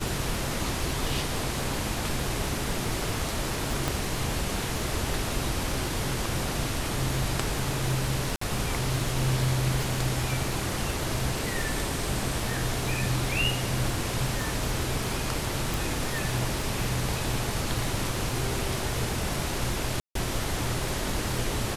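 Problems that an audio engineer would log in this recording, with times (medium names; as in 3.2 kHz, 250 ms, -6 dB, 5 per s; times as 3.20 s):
crackle 64 per s -32 dBFS
3.88 s: pop
8.36–8.41 s: dropout 54 ms
15.74 s: pop
20.00–20.15 s: dropout 153 ms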